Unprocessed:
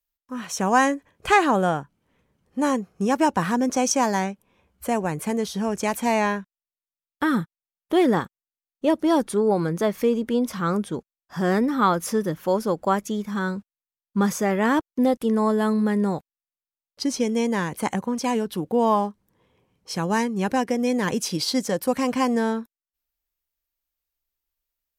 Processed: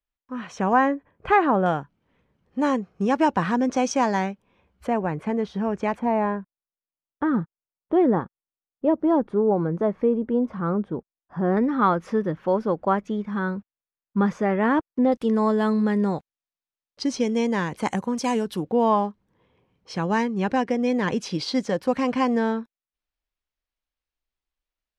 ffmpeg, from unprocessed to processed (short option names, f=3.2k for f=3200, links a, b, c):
-af "asetnsamples=n=441:p=0,asendcmd='0.73 lowpass f 1700;1.66 lowpass f 4000;4.87 lowpass f 2100;5.99 lowpass f 1100;11.57 lowpass f 2200;15.12 lowpass f 5400;17.86 lowpass f 9200;18.63 lowpass f 3900',lowpass=2.8k"